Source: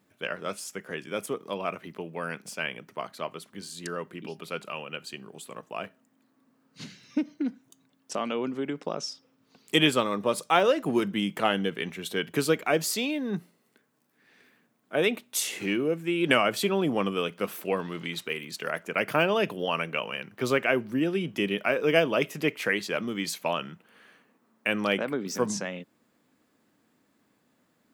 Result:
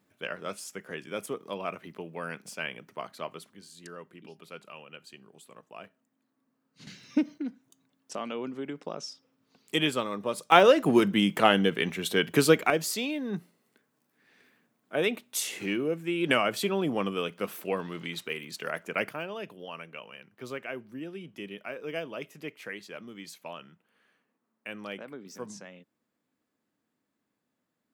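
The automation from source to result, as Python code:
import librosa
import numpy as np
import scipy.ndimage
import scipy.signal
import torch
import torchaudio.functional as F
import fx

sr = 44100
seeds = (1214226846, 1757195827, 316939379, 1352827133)

y = fx.gain(x, sr, db=fx.steps((0.0, -3.0), (3.53, -10.0), (6.87, 2.0), (7.38, -5.0), (10.52, 4.0), (12.7, -2.5), (19.09, -13.0)))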